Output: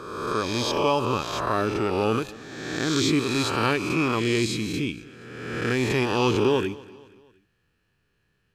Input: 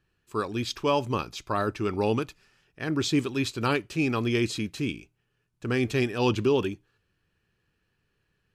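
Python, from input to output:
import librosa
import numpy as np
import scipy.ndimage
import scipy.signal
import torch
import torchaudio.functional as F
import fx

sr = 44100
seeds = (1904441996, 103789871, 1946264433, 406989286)

p1 = fx.spec_swells(x, sr, rise_s=1.38)
y = p1 + fx.echo_feedback(p1, sr, ms=237, feedback_pct=47, wet_db=-21, dry=0)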